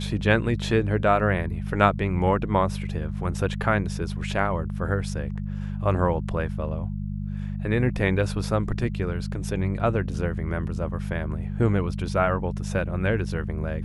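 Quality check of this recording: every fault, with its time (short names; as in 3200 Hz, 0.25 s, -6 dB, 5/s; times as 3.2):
hum 50 Hz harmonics 4 -30 dBFS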